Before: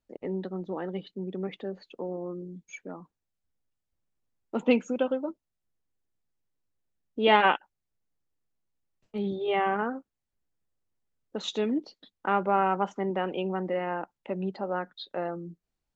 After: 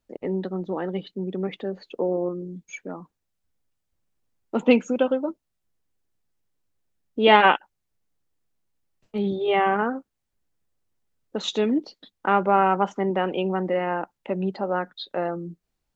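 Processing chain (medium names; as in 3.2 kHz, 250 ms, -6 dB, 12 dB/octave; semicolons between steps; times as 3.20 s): 1.82–2.29 s: peaking EQ 470 Hz +6 dB 1.4 oct; trim +5.5 dB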